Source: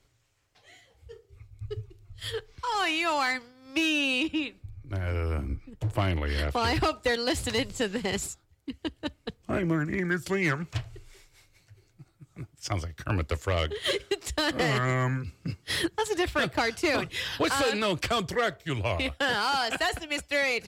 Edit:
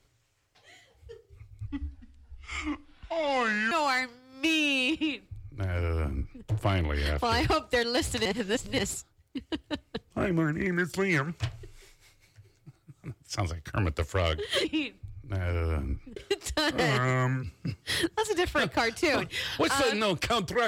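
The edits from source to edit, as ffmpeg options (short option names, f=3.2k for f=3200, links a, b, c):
-filter_complex "[0:a]asplit=7[a][b][c][d][e][f][g];[a]atrim=end=1.674[h];[b]atrim=start=1.67:end=3.04,asetpts=PTS-STARTPTS,asetrate=29547,aresample=44100[i];[c]atrim=start=3.036:end=7.582[j];[d]atrim=start=7.578:end=8.112,asetpts=PTS-STARTPTS,areverse[k];[e]atrim=start=8.108:end=13.972[l];[f]atrim=start=4.248:end=5.772[m];[g]atrim=start=13.968[n];[h][i]acrossfade=d=0.004:c1=hsin:c2=hsin[o];[o][j]acrossfade=d=0.004:c1=hsin:c2=hsin[p];[p][k]acrossfade=d=0.004:c1=hsin:c2=hsin[q];[q][l]acrossfade=d=0.004:c1=hsin:c2=hsin[r];[r][m]acrossfade=d=0.004:c1=hsin:c2=hsin[s];[s][n]acrossfade=d=0.004:c1=hsin:c2=hsin"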